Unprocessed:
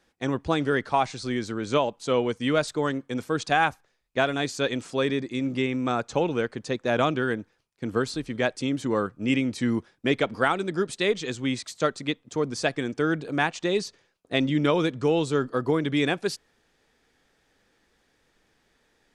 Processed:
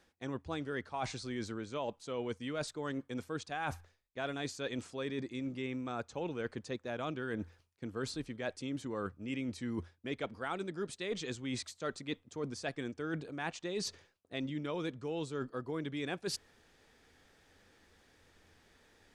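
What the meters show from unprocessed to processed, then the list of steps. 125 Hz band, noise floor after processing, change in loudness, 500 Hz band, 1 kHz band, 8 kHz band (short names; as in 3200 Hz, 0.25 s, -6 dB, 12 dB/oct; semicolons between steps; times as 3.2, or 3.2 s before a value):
-12.0 dB, -72 dBFS, -13.5 dB, -14.0 dB, -15.0 dB, -8.0 dB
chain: bell 85 Hz +14 dB 0.2 oct; reverse; compressor 6:1, threshold -38 dBFS, peak gain reduction 19.5 dB; reverse; gain +1.5 dB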